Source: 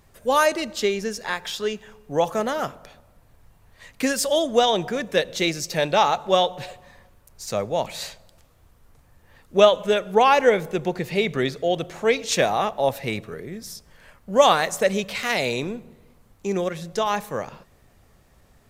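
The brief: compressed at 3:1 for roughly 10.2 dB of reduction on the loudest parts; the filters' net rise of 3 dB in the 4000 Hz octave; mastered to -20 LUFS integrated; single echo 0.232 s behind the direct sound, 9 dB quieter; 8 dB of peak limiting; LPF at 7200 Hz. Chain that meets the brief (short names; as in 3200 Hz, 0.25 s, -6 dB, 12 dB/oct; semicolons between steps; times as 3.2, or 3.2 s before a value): LPF 7200 Hz; bell 4000 Hz +4 dB; compressor 3:1, threshold -23 dBFS; limiter -17.5 dBFS; echo 0.232 s -9 dB; gain +9 dB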